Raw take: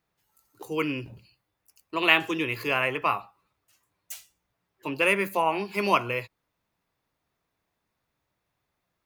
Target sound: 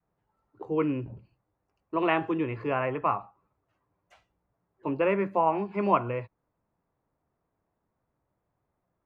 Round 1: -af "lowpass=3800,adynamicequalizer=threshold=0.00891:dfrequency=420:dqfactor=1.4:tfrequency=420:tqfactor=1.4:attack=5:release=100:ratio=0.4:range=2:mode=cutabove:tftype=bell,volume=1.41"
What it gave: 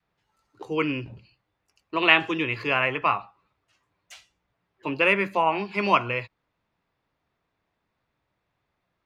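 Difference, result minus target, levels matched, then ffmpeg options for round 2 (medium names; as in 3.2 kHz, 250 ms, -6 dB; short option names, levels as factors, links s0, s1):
4 kHz band +13.0 dB
-af "lowpass=1000,adynamicequalizer=threshold=0.00891:dfrequency=420:dqfactor=1.4:tfrequency=420:tqfactor=1.4:attack=5:release=100:ratio=0.4:range=2:mode=cutabove:tftype=bell,volume=1.41"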